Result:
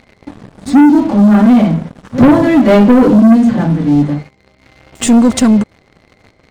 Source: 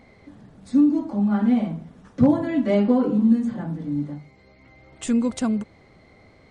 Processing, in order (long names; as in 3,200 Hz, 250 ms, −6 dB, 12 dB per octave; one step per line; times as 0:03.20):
backwards echo 76 ms −22.5 dB
leveller curve on the samples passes 3
level +6 dB